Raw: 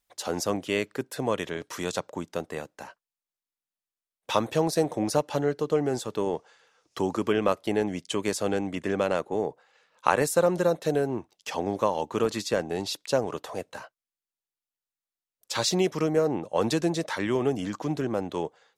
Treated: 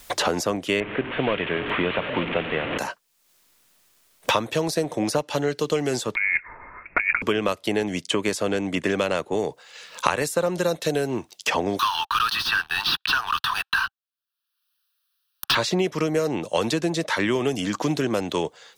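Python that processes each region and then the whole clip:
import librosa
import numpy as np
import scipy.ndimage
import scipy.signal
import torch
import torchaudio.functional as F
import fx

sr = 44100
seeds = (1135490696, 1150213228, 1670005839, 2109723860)

y = fx.chain(x, sr, fx.delta_mod(bps=16000, step_db=-33.0),
    fx.echo_single(ms=897, db=-14.5), at=(0.8, 2.78))
y = fx.chain(y, sr, fx.block_float(bits=5),
    fx.over_compress(threshold_db=-31.0, ratio=-0.5),
    fx.freq_invert(carrier_hz=2600), at=(6.15, 7.22))
y = fx.chain(y, sr, fx.highpass(hz=1300.0, slope=24),
    fx.leveller(passes=5),
    fx.fixed_phaser(hz=2100.0, stages=6), at=(11.79, 15.55))
y = fx.notch(y, sr, hz=800.0, q=16.0)
y = fx.dynamic_eq(y, sr, hz=2700.0, q=0.8, threshold_db=-43.0, ratio=4.0, max_db=4)
y = fx.band_squash(y, sr, depth_pct=100)
y = F.gain(torch.from_numpy(y), 2.0).numpy()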